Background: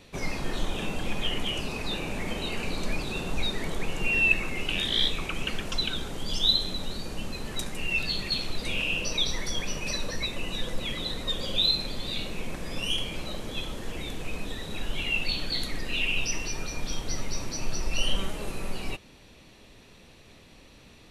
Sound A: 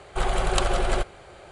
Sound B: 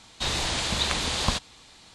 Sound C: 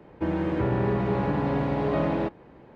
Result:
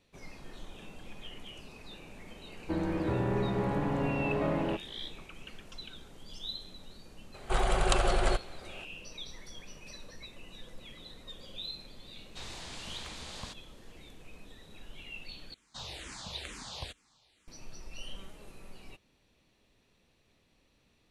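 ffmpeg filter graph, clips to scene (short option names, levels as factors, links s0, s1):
-filter_complex "[2:a]asplit=2[s0][s1];[0:a]volume=0.141[s2];[s0]asoftclip=type=tanh:threshold=0.237[s3];[s1]asplit=2[s4][s5];[s5]afreqshift=-2.2[s6];[s4][s6]amix=inputs=2:normalize=1[s7];[s2]asplit=2[s8][s9];[s8]atrim=end=15.544[s10];[s7]atrim=end=1.94,asetpts=PTS-STARTPTS,volume=0.211[s11];[s9]atrim=start=17.476[s12];[3:a]atrim=end=2.75,asetpts=PTS-STARTPTS,volume=0.531,afade=t=in:d=0.004:c=hsin,afade=t=out:st=2.746:d=0.004:c=hsin,adelay=2480[s13];[1:a]atrim=end=1.51,asetpts=PTS-STARTPTS,volume=0.668,afade=t=in:d=0.004:c=hsin,afade=t=out:st=1.506:d=0.004:c=hsin,adelay=7340[s14];[s3]atrim=end=1.94,asetpts=PTS-STARTPTS,volume=0.141,afade=t=in:d=0.004:c=hsin,afade=t=out:st=1.936:d=0.004:c=hsin,adelay=12150[s15];[s10][s11]acrossfade=d=0.004:c1=hsin:c2=hsin[s16];[s16][s12]acrossfade=d=0.004:c1=hsin:c2=hsin[s17];[s17][s13][s14][s15]amix=inputs=4:normalize=0"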